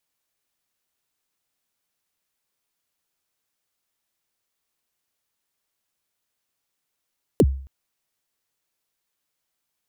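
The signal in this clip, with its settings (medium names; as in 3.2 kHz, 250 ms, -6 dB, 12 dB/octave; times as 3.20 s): kick drum length 0.27 s, from 540 Hz, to 67 Hz, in 49 ms, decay 0.50 s, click on, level -9 dB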